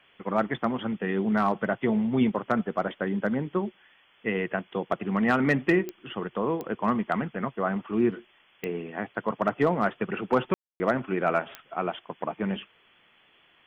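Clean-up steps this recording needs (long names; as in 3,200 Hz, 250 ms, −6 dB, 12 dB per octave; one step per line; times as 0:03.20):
clipped peaks rebuilt −13.5 dBFS
click removal
ambience match 0:10.54–0:10.80
noise reduction from a noise print 11 dB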